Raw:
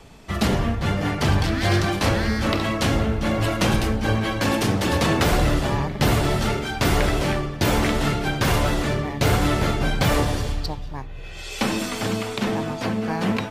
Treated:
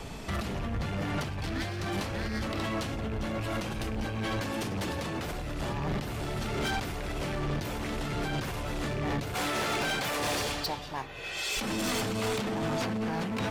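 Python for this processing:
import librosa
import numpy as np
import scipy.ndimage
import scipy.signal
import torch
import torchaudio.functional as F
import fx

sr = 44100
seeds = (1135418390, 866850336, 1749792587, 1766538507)

y = fx.rattle_buzz(x, sr, strikes_db=-19.0, level_db=-21.0)
y = fx.highpass(y, sr, hz=620.0, slope=6, at=(9.34, 11.57))
y = fx.over_compress(y, sr, threshold_db=-29.0, ratio=-1.0)
y = 10.0 ** (-27.0 / 20.0) * np.tanh(y / 10.0 ** (-27.0 / 20.0))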